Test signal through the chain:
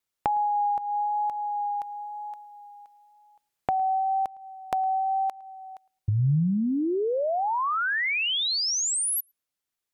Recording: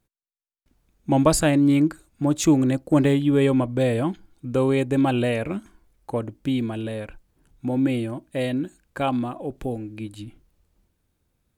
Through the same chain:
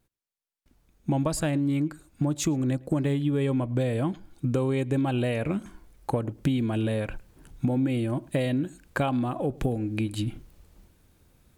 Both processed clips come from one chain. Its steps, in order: vocal rider within 5 dB 2 s; vibrato 1 Hz 14 cents; compressor 5:1, threshold -32 dBFS; dynamic EQ 140 Hz, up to +5 dB, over -51 dBFS, Q 1.9; on a send: darkening echo 0.109 s, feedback 18%, low-pass 3200 Hz, level -24 dB; on the sum: gain +6 dB

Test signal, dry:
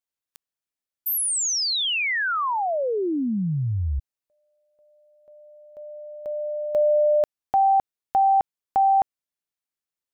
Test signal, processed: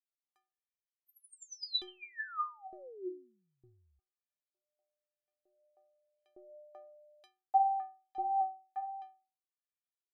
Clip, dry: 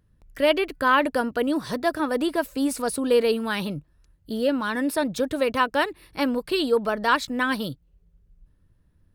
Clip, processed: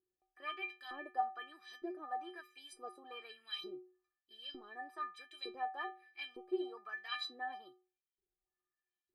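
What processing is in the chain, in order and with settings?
LFO band-pass saw up 1.1 Hz 360–4000 Hz; metallic resonator 360 Hz, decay 0.41 s, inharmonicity 0.03; gain +8 dB

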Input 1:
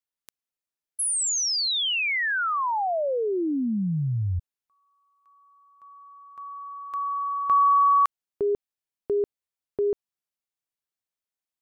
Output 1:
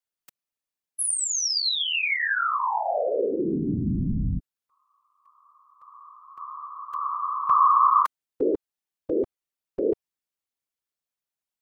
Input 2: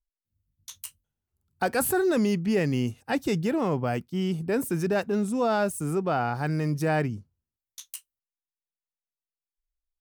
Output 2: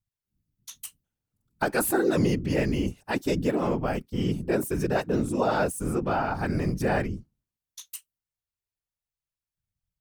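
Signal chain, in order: whisperiser

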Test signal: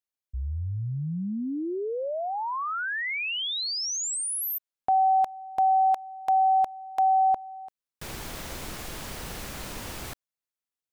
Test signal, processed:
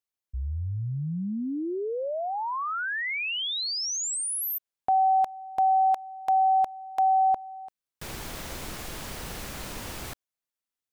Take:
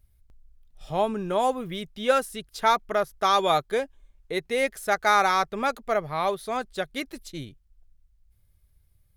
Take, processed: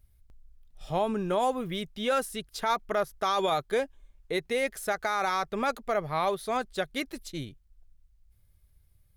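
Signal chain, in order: limiter -18 dBFS

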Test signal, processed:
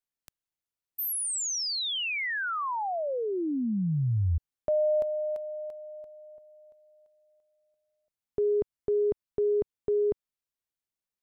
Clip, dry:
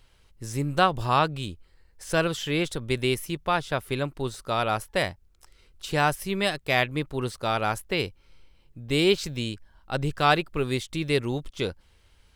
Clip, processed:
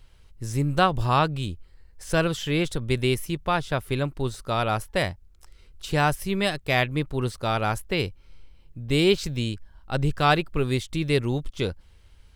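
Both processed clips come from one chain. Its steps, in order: low shelf 160 Hz +8 dB

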